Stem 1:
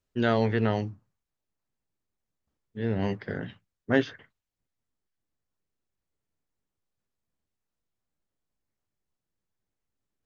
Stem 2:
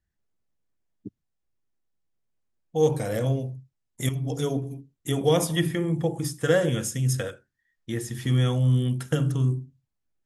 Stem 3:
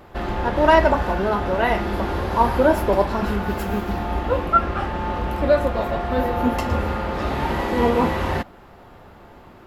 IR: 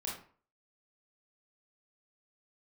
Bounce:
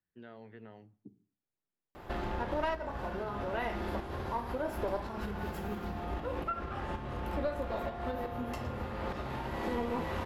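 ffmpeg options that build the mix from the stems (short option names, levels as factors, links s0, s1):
-filter_complex "[0:a]volume=0.106,asplit=2[s0][s1];[s1]volume=0.0708[s2];[1:a]acrossover=split=140[s3][s4];[s4]acompressor=threshold=0.00708:ratio=2.5[s5];[s3][s5]amix=inputs=2:normalize=0,alimiter=level_in=1.19:limit=0.0631:level=0:latency=1:release=351,volume=0.841,volume=0.562,asplit=3[s6][s7][s8];[s7]volume=0.2[s9];[2:a]bandreject=f=50:t=h:w=6,bandreject=f=100:t=h:w=6,bandreject=f=150:t=h:w=6,bandreject=f=200:t=h:w=6,adelay=1950,volume=0.794,asplit=2[s10][s11];[s11]volume=0.211[s12];[s8]apad=whole_len=512246[s13];[s10][s13]sidechaincompress=threshold=0.00447:ratio=8:attack=12:release=113[s14];[s0][s6]amix=inputs=2:normalize=0,highpass=130,lowpass=3200,acompressor=threshold=0.00501:ratio=2.5,volume=1[s15];[3:a]atrim=start_sample=2205[s16];[s2][s9][s12]amix=inputs=3:normalize=0[s17];[s17][s16]afir=irnorm=-1:irlink=0[s18];[s14][s15][s18]amix=inputs=3:normalize=0,aeval=exprs='(tanh(2.24*val(0)+0.5)-tanh(0.5))/2.24':c=same,acompressor=threshold=0.0178:ratio=3"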